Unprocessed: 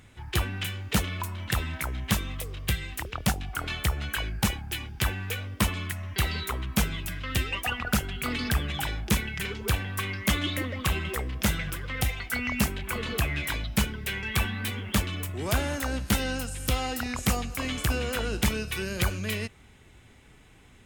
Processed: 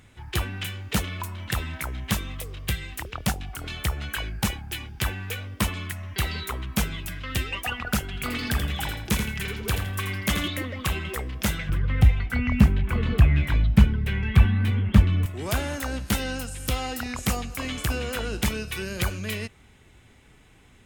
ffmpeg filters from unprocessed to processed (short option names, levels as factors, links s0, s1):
-filter_complex "[0:a]asettb=1/sr,asplit=3[s0][s1][s2];[s0]atrim=end=3.384[s3];[s1]atrim=start=3.38:end=3.85,asetpts=PTS-STARTPTS,afade=t=in:d=0.004:c=qsin,afade=t=out:st=0.466:d=0.004:c=qsin,acrossover=split=490|3000[s4][s5][s6];[s5]acompressor=threshold=0.0126:ratio=6:attack=3.2:release=140:knee=2.83:detection=peak[s7];[s4][s7][s6]amix=inputs=3:normalize=0[s8];[s2]atrim=start=3.846[s9];[s3][s8]acrossfade=d=0.004:c1=hsin:c2=qsin[s10];[s10][s9]acrossfade=d=0.004:c1=qsin:c2=hsin,asettb=1/sr,asplit=3[s11][s12][s13];[s11]atrim=end=8.054[s14];[s12]atrim=start=8.05:end=10.48,asetpts=PTS-STARTPTS,afade=t=in:d=0.004:c=qsin,afade=t=out:st=2.426:d=0.004:c=qsin,aecho=1:1:83|166|249:0.447|0.121|0.0326,atrim=end_sample=107163[s15];[s13]atrim=start=10.476[s16];[s14][s15]acrossfade=d=0.004:c1=hsin:c2=qsin[s17];[s17][s16]acrossfade=d=0.004:c1=qsin:c2=hsin,asettb=1/sr,asplit=3[s18][s19][s20];[s18]atrim=end=11.694[s21];[s19]atrim=start=11.69:end=15.26,asetpts=PTS-STARTPTS,afade=t=in:d=0.004:c=qsin,afade=t=out:st=3.566:d=0.004:c=qsin,bass=f=250:g=13,treble=f=4000:g=-13[s22];[s20]atrim=start=15.256[s23];[s21][s22]acrossfade=d=0.004:c1=hsin:c2=qsin[s24];[s24][s23]acrossfade=d=0.004:c1=qsin:c2=hsin"